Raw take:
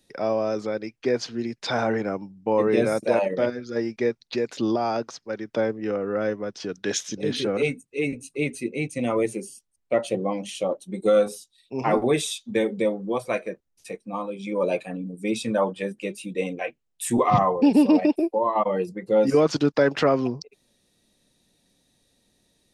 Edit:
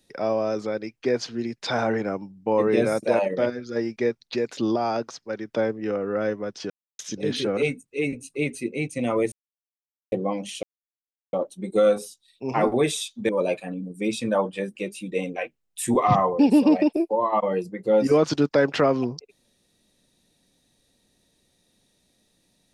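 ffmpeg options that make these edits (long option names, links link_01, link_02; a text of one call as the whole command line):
ffmpeg -i in.wav -filter_complex "[0:a]asplit=7[link_01][link_02][link_03][link_04][link_05][link_06][link_07];[link_01]atrim=end=6.7,asetpts=PTS-STARTPTS,afade=type=out:start_time=6.696:duration=0.004:curve=hsin[link_08];[link_02]atrim=start=6.7:end=6.99,asetpts=PTS-STARTPTS,volume=0[link_09];[link_03]atrim=start=6.99:end=9.32,asetpts=PTS-STARTPTS,afade=type=in:duration=0.004:curve=hsin,afade=type=out:start_time=2.326:duration=0.004:curve=hsin[link_10];[link_04]atrim=start=9.32:end=10.12,asetpts=PTS-STARTPTS,volume=0[link_11];[link_05]atrim=start=10.12:end=10.63,asetpts=PTS-STARTPTS,afade=type=in:duration=0.004:curve=hsin,afade=type=out:start_time=0.506:duration=0.004:curve=hsin,apad=pad_dur=0.7[link_12];[link_06]atrim=start=10.63:end=12.592,asetpts=PTS-STARTPTS,afade=type=in:duration=0.004:curve=hsin[link_13];[link_07]atrim=start=14.518[link_14];[link_08][link_09][link_10][link_11][link_12][link_13]concat=n=6:v=0:a=1[link_15];[link_15][link_14]acrossfade=duration=0.004:curve1=hsin:curve2=hsin" out.wav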